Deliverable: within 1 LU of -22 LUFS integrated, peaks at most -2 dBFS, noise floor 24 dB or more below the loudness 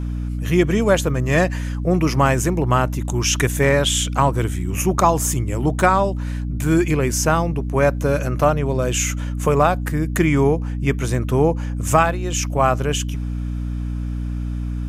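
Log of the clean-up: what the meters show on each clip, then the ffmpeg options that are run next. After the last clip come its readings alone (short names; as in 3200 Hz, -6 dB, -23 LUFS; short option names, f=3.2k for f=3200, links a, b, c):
hum 60 Hz; harmonics up to 300 Hz; hum level -22 dBFS; loudness -19.5 LUFS; peak -1.5 dBFS; loudness target -22.0 LUFS
-> -af "bandreject=f=60:t=h:w=6,bandreject=f=120:t=h:w=6,bandreject=f=180:t=h:w=6,bandreject=f=240:t=h:w=6,bandreject=f=300:t=h:w=6"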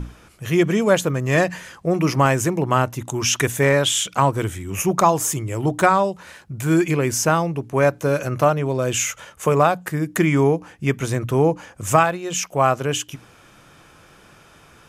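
hum none; loudness -20.0 LUFS; peak -2.0 dBFS; loudness target -22.0 LUFS
-> -af "volume=-2dB"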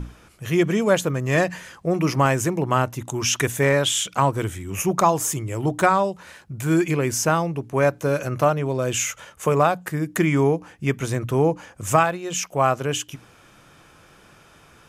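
loudness -22.0 LUFS; peak -4.0 dBFS; noise floor -52 dBFS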